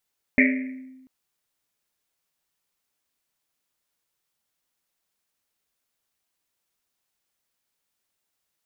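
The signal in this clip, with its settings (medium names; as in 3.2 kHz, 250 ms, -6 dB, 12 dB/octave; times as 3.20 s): Risset drum length 0.69 s, pitch 260 Hz, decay 1.23 s, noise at 2.1 kHz, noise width 550 Hz, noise 35%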